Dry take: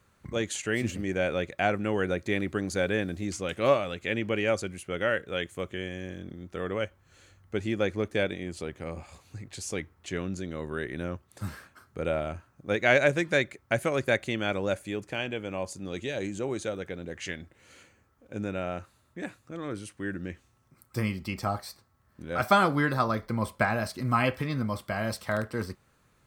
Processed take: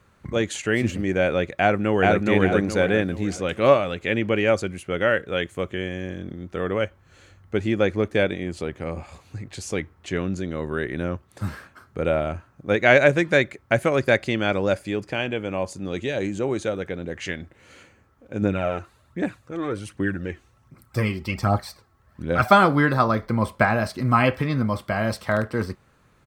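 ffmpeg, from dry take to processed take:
ffmpeg -i in.wav -filter_complex "[0:a]asplit=2[link_01][link_02];[link_02]afade=type=in:start_time=1.6:duration=0.01,afade=type=out:start_time=2.24:duration=0.01,aecho=0:1:420|840|1260|1680|2100:0.944061|0.330421|0.115647|0.0404766|0.0141668[link_03];[link_01][link_03]amix=inputs=2:normalize=0,asettb=1/sr,asplit=3[link_04][link_05][link_06];[link_04]atrim=end=14.024[link_07];[link_05]atrim=start=14.02:end=15.12,asetpts=PTS-STARTPTS,afade=type=in:duration=0.004:curve=qsin,afade=type=out:start_time=1.096:duration=0.004:curve=qsin,equalizer=frequency=4900:width=7.2:gain=12[link_08];[link_06]atrim=start=15.116[link_09];[link_07][link_08]acrossfade=duration=0.004:curve1=hsin:curve2=qsin[link_10];[link_10][link_09]acrossfade=duration=0.004:curve1=qsin:curve2=hsin,asplit=3[link_11][link_12][link_13];[link_11]afade=type=out:start_time=18.41:duration=0.02[link_14];[link_12]aphaser=in_gain=1:out_gain=1:delay=3:decay=0.5:speed=1.3:type=triangular,afade=type=in:start_time=18.41:duration=0.02,afade=type=out:start_time=22.5:duration=0.02[link_15];[link_13]afade=type=in:start_time=22.5:duration=0.02[link_16];[link_14][link_15][link_16]amix=inputs=3:normalize=0,highshelf=frequency=4600:gain=-8,volume=7dB" out.wav

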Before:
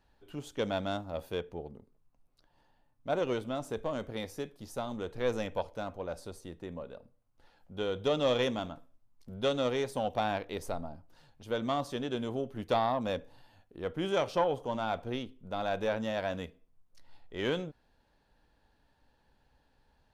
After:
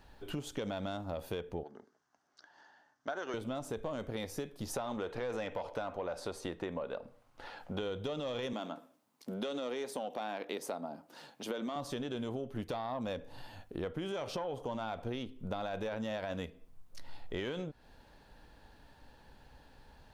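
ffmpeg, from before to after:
ffmpeg -i in.wav -filter_complex "[0:a]asettb=1/sr,asplit=3[link_01][link_02][link_03];[link_01]atrim=end=1.634[link_04];[link_02]atrim=start=1.63:end=3.34,asetpts=PTS-STARTPTS,afade=type=in:duration=0.004:curve=qsin,afade=type=out:start_time=1.706:duration=0.004:curve=qsin,highpass=450,equalizer=frequency=510:width_type=q:width=4:gain=-10,equalizer=frequency=1000:width_type=q:width=4:gain=-3,equalizer=frequency=1600:width_type=q:width=4:gain=9,equalizer=frequency=2500:width_type=q:width=4:gain=-10,equalizer=frequency=3900:width_type=q:width=4:gain=-5,equalizer=frequency=6000:width_type=q:width=4:gain=6,lowpass=frequency=6500:width=0.5412,lowpass=frequency=6500:width=1.3066[link_05];[link_03]atrim=start=3.336[link_06];[link_04][link_05]acrossfade=duration=0.004:curve1=hsin:curve2=qsin[link_07];[link_07][link_06]acrossfade=duration=0.004:curve1=qsin:curve2=hsin,asettb=1/sr,asplit=3[link_08][link_09][link_10];[link_08]atrim=end=4.734[link_11];[link_09]atrim=start=4.73:end=7.79,asetpts=PTS-STARTPTS,afade=type=in:duration=0.004:curve=qsin,afade=type=out:start_time=3.056:duration=0.004:curve=qsin,asplit=2[link_12][link_13];[link_13]highpass=frequency=720:poles=1,volume=15dB,asoftclip=type=tanh:threshold=-18dB[link_14];[link_12][link_14]amix=inputs=2:normalize=0,lowpass=frequency=2400:poles=1,volume=-6dB[link_15];[link_10]atrim=start=7.786[link_16];[link_11][link_15]acrossfade=duration=0.004:curve1=hsin:curve2=qsin[link_17];[link_17][link_16]acrossfade=duration=0.004:curve1=qsin:curve2=hsin,asettb=1/sr,asplit=3[link_18][link_19][link_20];[link_18]atrim=end=8.534[link_21];[link_19]atrim=start=8.53:end=11.76,asetpts=PTS-STARTPTS,afade=type=in:duration=0.004:curve=qsin,afade=type=out:start_time=3.226:duration=0.004:curve=qsin,highpass=frequency=210:width=0.5412,highpass=frequency=210:width=1.3066[link_22];[link_20]atrim=start=11.756[link_23];[link_21][link_22]acrossfade=duration=0.004:curve1=hsin:curve2=qsin[link_24];[link_24][link_23]acrossfade=duration=0.004:curve1=qsin:curve2=hsin,alimiter=level_in=3.5dB:limit=-24dB:level=0:latency=1:release=50,volume=-3.5dB,acompressor=threshold=-47dB:ratio=6,volume=11dB" out.wav

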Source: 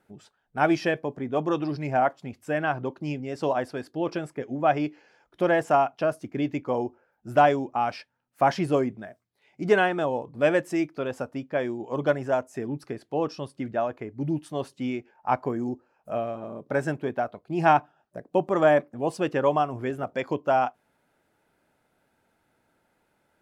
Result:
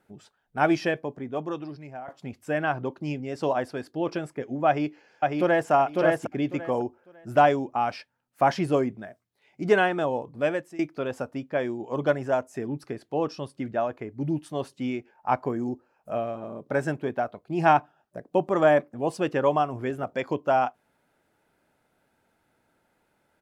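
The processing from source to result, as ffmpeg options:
ffmpeg -i in.wav -filter_complex "[0:a]asplit=2[link_01][link_02];[link_02]afade=type=in:start_time=4.67:duration=0.01,afade=type=out:start_time=5.71:duration=0.01,aecho=0:1:550|1100|1650:0.794328|0.158866|0.0317731[link_03];[link_01][link_03]amix=inputs=2:normalize=0,asplit=3[link_04][link_05][link_06];[link_04]atrim=end=2.08,asetpts=PTS-STARTPTS,afade=type=out:start_time=0.76:duration=1.32:silence=0.0944061[link_07];[link_05]atrim=start=2.08:end=10.79,asetpts=PTS-STARTPTS,afade=type=in:duration=0.004:curve=hsin:silence=0.0944061,afade=type=out:start_time=8.18:duration=0.53:silence=0.11885[link_08];[link_06]atrim=start=10.79,asetpts=PTS-STARTPTS,afade=type=in:duration=0.004:curve=hsin:silence=0.11885[link_09];[link_07][link_08][link_09]concat=n=3:v=0:a=1" out.wav

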